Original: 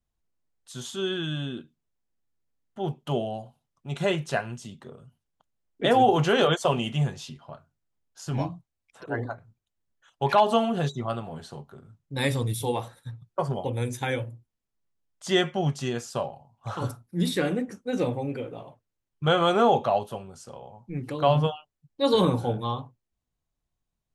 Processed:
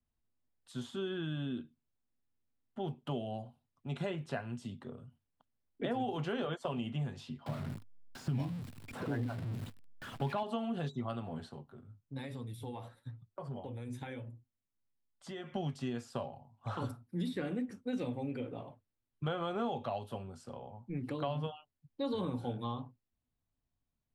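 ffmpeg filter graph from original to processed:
-filter_complex "[0:a]asettb=1/sr,asplit=3[s0][s1][s2];[s0]atrim=end=7.464[s3];[s1]atrim=start=7.46:end=10.43,asetpts=PTS-STARTPTS,afade=t=in:d=0.004:c=qsin,afade=t=out:st=2.966:d=0.004:c=qsin,aeval=exprs='val(0)+0.5*0.0178*sgn(val(0))':c=same,equalizer=f=140:t=o:w=1.9:g=10.5[s4];[s2]atrim=start=10.426[s5];[s3][s4]acrossfade=d=0.004:c1=hsin:c2=qsin[s6];[s6][s5]acrossfade=d=0.004:c1=qsin:c2=hsin,asettb=1/sr,asplit=3[s7][s8][s9];[s7]atrim=end=11.494[s10];[s8]atrim=start=11.49:end=15.52,asetpts=PTS-STARTPTS,afade=t=in:d=0.004:c=qsin,afade=t=out:st=4.026:d=0.004:c=qsin,acompressor=threshold=0.0251:ratio=5:attack=3.2:release=140:knee=1:detection=peak,flanger=delay=4.6:depth=5.7:regen=65:speed=1.1:shape=sinusoidal[s11];[s9]atrim=start=15.516[s12];[s10][s11]acrossfade=d=0.004:c1=hsin:c2=qsin[s13];[s13][s12]acrossfade=d=0.004:c1=qsin:c2=hsin,equalizer=f=100:t=o:w=0.33:g=8,equalizer=f=250:t=o:w=0.33:g=8,equalizer=f=6300:t=o:w=0.33:g=-7,acrossover=split=110|2100[s14][s15][s16];[s14]acompressor=threshold=0.00398:ratio=4[s17];[s15]acompressor=threshold=0.0282:ratio=4[s18];[s16]acompressor=threshold=0.00501:ratio=4[s19];[s17][s18][s19]amix=inputs=3:normalize=0,highshelf=f=7200:g=-9,volume=0.596"

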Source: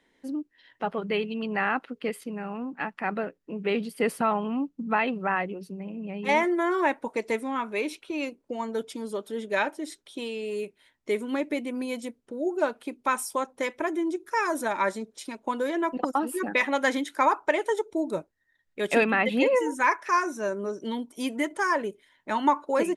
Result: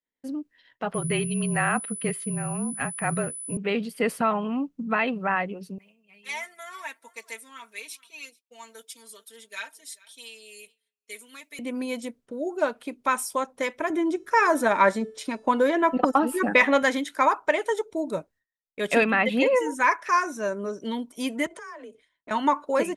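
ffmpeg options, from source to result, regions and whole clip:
-filter_complex "[0:a]asettb=1/sr,asplit=3[s0][s1][s2];[s0]atrim=end=0.944[s3];[s1]atrim=start=0.94:end=3.57,asetpts=PTS-STARTPTS,afade=t=in:d=0.004:c=qsin,afade=t=out:st=2.626:d=0.004:c=qsin,bass=f=250:g=6,treble=f=4000:g=-3,aeval=exprs='val(0)+0.0158*sin(2*PI*10000*n/s)':c=same,afreqshift=-36[s4];[s2]atrim=start=3.566[s5];[s3][s4]acrossfade=d=0.004:c1=hsin:c2=qsin[s6];[s6][s5]acrossfade=d=0.004:c1=qsin:c2=hsin,asettb=1/sr,asplit=3[s7][s8][s9];[s7]atrim=end=5.784[s10];[s8]atrim=start=5.78:end=11.59,asetpts=PTS-STARTPTS,afade=t=in:d=0.004:c=qsin,afade=t=out:st=5.806:d=0.004:c=qsin,aderivative,aecho=1:1:4.4:0.78,atrim=end_sample=256221,aecho=1:1:436:0.075,atrim=end_sample=256221[s11];[s9]atrim=start=11.586[s12];[s10][s11]acrossfade=d=0.004:c1=hsin:c2=qsin[s13];[s13][s12]acrossfade=d=0.004:c1=qsin:c2=hsin,asettb=1/sr,asplit=3[s14][s15][s16];[s14]atrim=end=13.904[s17];[s15]atrim=start=13.9:end=16.83,asetpts=PTS-STARTPTS,afade=t=in:d=0.004:c=qsin,afade=t=out:st=2.926:d=0.004:c=qsin,highshelf=f=3400:g=-7.5,bandreject=f=438.8:t=h:w=4,bandreject=f=877.6:t=h:w=4,bandreject=f=1316.4:t=h:w=4,bandreject=f=1755.2:t=h:w=4,bandreject=f=2194:t=h:w=4,bandreject=f=2632.8:t=h:w=4,bandreject=f=3071.6:t=h:w=4,bandreject=f=3510.4:t=h:w=4,bandreject=f=3949.2:t=h:w=4,bandreject=f=4388:t=h:w=4,bandreject=f=4826.8:t=h:w=4,bandreject=f=5265.6:t=h:w=4,bandreject=f=5704.4:t=h:w=4,bandreject=f=6143.2:t=h:w=4,bandreject=f=6582:t=h:w=4,bandreject=f=7020.8:t=h:w=4,bandreject=f=7459.6:t=h:w=4,bandreject=f=7898.4:t=h:w=4,bandreject=f=8337.2:t=h:w=4,bandreject=f=8776:t=h:w=4,bandreject=f=9214.8:t=h:w=4,bandreject=f=9653.6:t=h:w=4,bandreject=f=10092.4:t=h:w=4,acontrast=56[s18];[s16]atrim=start=16.826[s19];[s17][s18]acrossfade=d=0.004:c1=hsin:c2=qsin[s20];[s20][s19]acrossfade=d=0.004:c1=qsin:c2=hsin,asettb=1/sr,asplit=3[s21][s22][s23];[s21]atrim=end=21.464[s24];[s22]atrim=start=21.46:end=22.31,asetpts=PTS-STARTPTS,afade=t=in:d=0.004:c=qsin,afade=t=out:st=0.846:d=0.004:c=qsin,lowpass=f=9800:w=0.5412,lowpass=f=9800:w=1.3066,acompressor=threshold=0.0126:ratio=20:attack=3.2:release=140:knee=1:detection=peak,afreqshift=34[s25];[s23]atrim=start=22.306[s26];[s24][s25]acrossfade=d=0.004:c1=hsin:c2=qsin[s27];[s27][s26]acrossfade=d=0.004:c1=qsin:c2=hsin,bandreject=f=850:w=13,agate=range=0.0224:threshold=0.00282:ratio=3:detection=peak,equalizer=f=350:t=o:w=0.4:g=-6,volume=1.26"

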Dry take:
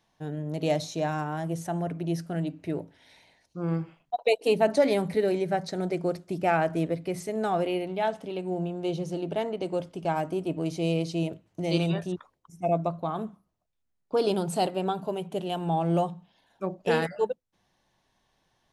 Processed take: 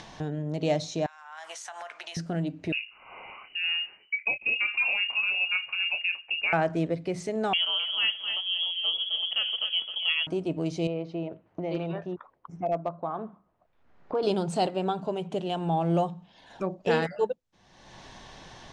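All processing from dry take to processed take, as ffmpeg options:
-filter_complex "[0:a]asettb=1/sr,asplit=3[s0][s1][s2];[s0]atrim=end=1.064[s3];[s1]atrim=start=1.06:end=2.17,asetpts=PTS-STARTPTS,afade=t=in:d=0.004:c=qsin,afade=t=out:st=1.106:d=0.004:c=qsin,highpass=f=1000:w=0.5412,highpass=f=1000:w=1.3066,acompressor=threshold=0.00447:ratio=12:attack=3.2:release=140:knee=1:detection=peak,asplit=2[s4][s5];[s5]adelay=19,volume=0.2[s6];[s4][s6]amix=inputs=2:normalize=0,atrim=end_sample=48951[s7];[s2]atrim=start=2.166[s8];[s3][s7]acrossfade=d=0.004:c1=hsin:c2=qsin[s9];[s9][s8]acrossfade=d=0.004:c1=qsin:c2=hsin,asettb=1/sr,asplit=3[s10][s11][s12];[s10]atrim=end=2.724[s13];[s11]atrim=start=2.72:end=6.53,asetpts=PTS-STARTPTS,afade=t=in:d=0.004:c=qsin,afade=t=out:st=3.806:d=0.004:c=qsin,acompressor=threshold=0.0708:ratio=6:attack=3.2:release=140:knee=1:detection=peak,asplit=2[s14][s15];[s15]adelay=26,volume=0.335[s16];[s14][s16]amix=inputs=2:normalize=0,atrim=end_sample=168021,lowpass=f=2600:t=q:w=0.5098,lowpass=f=2600:t=q:w=0.6013,lowpass=f=2600:t=q:w=0.9,lowpass=f=2600:t=q:w=2.563,afreqshift=-3000[s17];[s12]atrim=start=6.526[s18];[s13][s17]acrossfade=d=0.004:c1=hsin:c2=qsin[s19];[s19][s18]acrossfade=d=0.004:c1=qsin:c2=hsin,asettb=1/sr,asplit=3[s20][s21][s22];[s20]atrim=end=7.534[s23];[s21]atrim=start=7.53:end=10.27,asetpts=PTS-STARTPTS,afade=t=in:d=0.004:c=qsin,afade=t=out:st=2.736:d=0.004:c=qsin,aecho=1:1:261|522|783:0.355|0.0781|0.0172,atrim=end_sample=120834,lowpass=f=3000:t=q:w=0.5098,lowpass=f=3000:t=q:w=0.6013,lowpass=f=3000:t=q:w=0.9,lowpass=f=3000:t=q:w=2.563,afreqshift=-3500[s24];[s22]atrim=start=10.266[s25];[s23][s24]acrossfade=d=0.004:c1=hsin:c2=qsin[s26];[s26][s25]acrossfade=d=0.004:c1=qsin:c2=hsin,asettb=1/sr,asplit=3[s27][s28][s29];[s27]atrim=end=10.874[s30];[s28]atrim=start=10.87:end=14.23,asetpts=PTS-STARTPTS,afade=t=in:d=0.004:c=qsin,afade=t=out:st=3.356:d=0.004:c=qsin,lowpass=1500,lowshelf=f=300:g=-12,asoftclip=type=hard:threshold=0.0944[s31];[s29]atrim=start=14.226[s32];[s30][s31]acrossfade=d=0.004:c1=hsin:c2=qsin[s33];[s33][s32]acrossfade=d=0.004:c1=qsin:c2=hsin,acompressor=mode=upward:threshold=0.0447:ratio=2.5,lowpass=f=7600:w=0.5412,lowpass=f=7600:w=1.3066"

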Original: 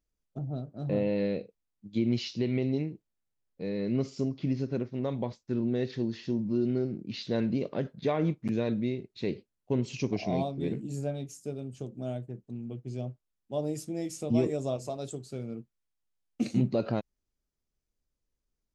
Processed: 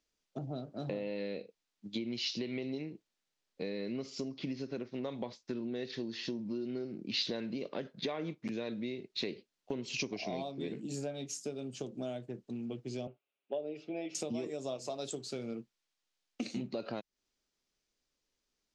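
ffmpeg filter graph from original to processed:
-filter_complex "[0:a]asettb=1/sr,asplit=3[s0][s1][s2];[s0]atrim=end=13.074[s3];[s1]atrim=start=13.07:end=14.15,asetpts=PTS-STARTPTS,afade=t=in:d=0.004:c=qsin,afade=t=out:st=1.076:d=0.004:c=qsin,highpass=260,equalizer=f=270:t=q:w=4:g=-6,equalizer=f=390:t=q:w=4:g=4,equalizer=f=610:t=q:w=4:g=4,equalizer=f=1000:t=q:w=4:g=-6,equalizer=f=1800:t=q:w=4:g=-9,equalizer=f=2600:t=q:w=4:g=5,lowpass=f=2900:w=0.5412,lowpass=f=2900:w=1.3066,aecho=1:1:7.2:0.48,atrim=end_sample=47628[s4];[s2]atrim=start=14.146[s5];[s3][s4]acrossfade=d=0.004:c1=hsin:c2=qsin[s6];[s6][s5]acrossfade=d=0.004:c1=qsin:c2=hsin,acrossover=split=200 6200:gain=0.224 1 0.0891[s7][s8][s9];[s7][s8][s9]amix=inputs=3:normalize=0,acompressor=threshold=0.01:ratio=6,highshelf=f=2600:g=11.5,volume=1.58"

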